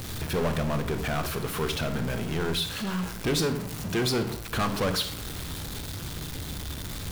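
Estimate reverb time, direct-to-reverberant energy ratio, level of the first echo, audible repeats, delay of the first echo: 0.70 s, 9.0 dB, no echo audible, no echo audible, no echo audible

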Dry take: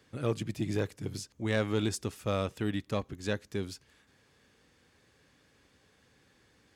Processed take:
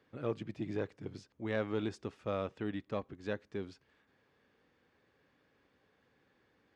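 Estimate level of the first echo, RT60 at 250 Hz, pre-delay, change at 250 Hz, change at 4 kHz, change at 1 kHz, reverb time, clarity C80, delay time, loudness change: no echo audible, no reverb audible, no reverb audible, −5.5 dB, −11.5 dB, −4.5 dB, no reverb audible, no reverb audible, no echo audible, −5.5 dB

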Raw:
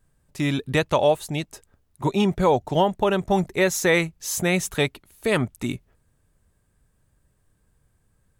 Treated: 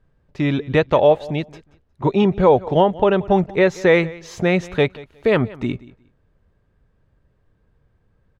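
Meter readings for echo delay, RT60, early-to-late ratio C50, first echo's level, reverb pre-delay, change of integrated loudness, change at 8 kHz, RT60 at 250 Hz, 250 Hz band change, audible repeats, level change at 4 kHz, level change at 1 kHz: 180 ms, no reverb audible, no reverb audible, −20.5 dB, no reverb audible, +4.5 dB, below −10 dB, no reverb audible, +4.5 dB, 2, −1.5 dB, +3.5 dB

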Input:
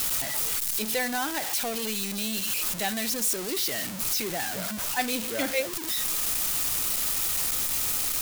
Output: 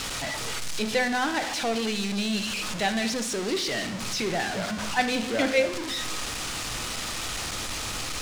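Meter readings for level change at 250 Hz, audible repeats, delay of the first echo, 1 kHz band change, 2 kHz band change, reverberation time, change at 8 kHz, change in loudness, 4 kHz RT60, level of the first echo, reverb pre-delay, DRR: +5.5 dB, no echo audible, no echo audible, +4.5 dB, +4.0 dB, 1.2 s, −5.0 dB, −1.5 dB, 0.75 s, no echo audible, 13 ms, 9.0 dB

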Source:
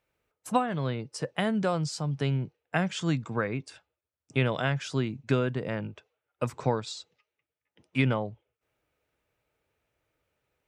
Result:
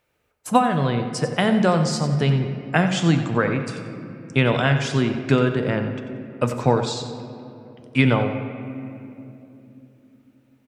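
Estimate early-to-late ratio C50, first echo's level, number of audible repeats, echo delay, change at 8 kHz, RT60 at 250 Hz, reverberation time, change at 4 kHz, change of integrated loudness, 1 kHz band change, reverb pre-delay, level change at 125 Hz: 7.0 dB, −11.5 dB, 2, 91 ms, +8.5 dB, 4.4 s, 2.9 s, +9.0 dB, +8.5 dB, +9.5 dB, 4 ms, +8.5 dB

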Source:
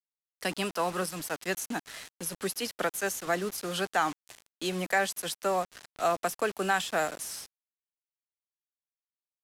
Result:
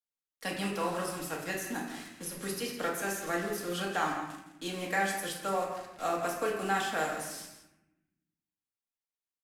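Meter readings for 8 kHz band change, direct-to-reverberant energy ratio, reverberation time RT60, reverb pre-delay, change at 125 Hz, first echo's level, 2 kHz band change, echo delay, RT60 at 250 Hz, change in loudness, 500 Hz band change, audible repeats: −4.0 dB, −3.0 dB, 0.85 s, 4 ms, −1.0 dB, −10.0 dB, −2.5 dB, 167 ms, 1.5 s, −2.5 dB, −3.0 dB, 1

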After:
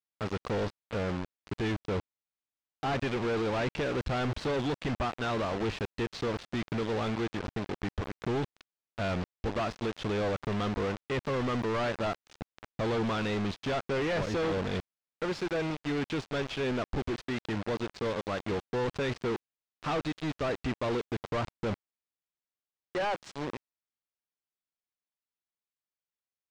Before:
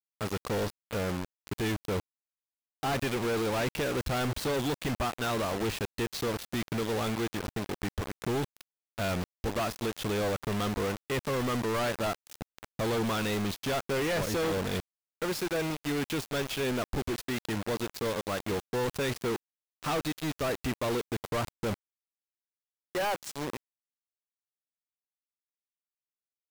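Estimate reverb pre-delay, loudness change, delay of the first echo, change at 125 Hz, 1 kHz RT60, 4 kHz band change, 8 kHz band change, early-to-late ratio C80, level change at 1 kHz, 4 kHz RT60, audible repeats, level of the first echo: no reverb audible, −1.0 dB, no echo audible, 0.0 dB, no reverb audible, −3.5 dB, −11.0 dB, no reverb audible, −0.5 dB, no reverb audible, no echo audible, no echo audible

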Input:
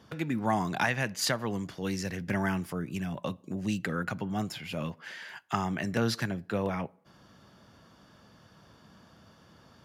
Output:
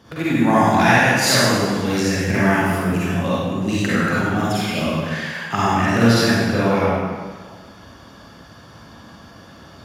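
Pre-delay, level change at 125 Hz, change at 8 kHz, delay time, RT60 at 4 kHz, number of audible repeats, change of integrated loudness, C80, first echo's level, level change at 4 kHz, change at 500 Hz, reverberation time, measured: 39 ms, +13.5 dB, +14.0 dB, no echo audible, 1.3 s, no echo audible, +14.5 dB, −1.5 dB, no echo audible, +14.5 dB, +14.5 dB, 1.6 s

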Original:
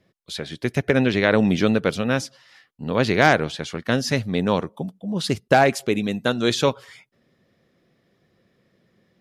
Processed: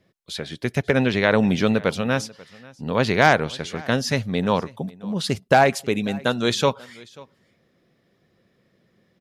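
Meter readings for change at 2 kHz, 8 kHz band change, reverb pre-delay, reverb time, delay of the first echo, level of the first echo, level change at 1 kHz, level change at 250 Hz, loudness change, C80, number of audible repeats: 0.0 dB, 0.0 dB, no reverb audible, no reverb audible, 539 ms, −23.0 dB, +1.0 dB, −1.0 dB, −0.5 dB, no reverb audible, 1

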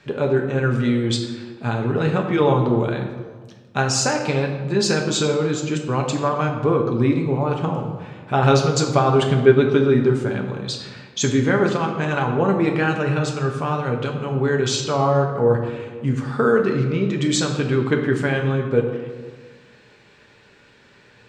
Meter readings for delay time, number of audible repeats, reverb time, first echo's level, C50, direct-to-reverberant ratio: no echo audible, no echo audible, 1.5 s, no echo audible, 5.5 dB, 1.5 dB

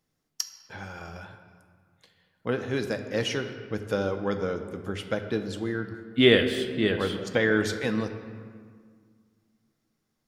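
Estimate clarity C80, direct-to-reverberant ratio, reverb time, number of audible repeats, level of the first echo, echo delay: 10.0 dB, 6.5 dB, 1.9 s, no echo audible, no echo audible, no echo audible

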